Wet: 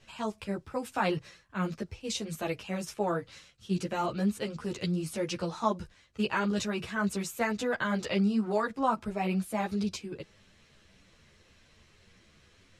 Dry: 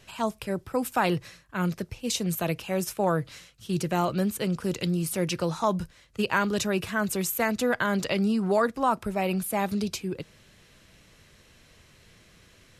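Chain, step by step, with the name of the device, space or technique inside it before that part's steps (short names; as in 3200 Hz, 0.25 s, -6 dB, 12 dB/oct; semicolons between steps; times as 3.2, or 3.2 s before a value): string-machine ensemble chorus (ensemble effect; LPF 7700 Hz 12 dB/oct); gain -1.5 dB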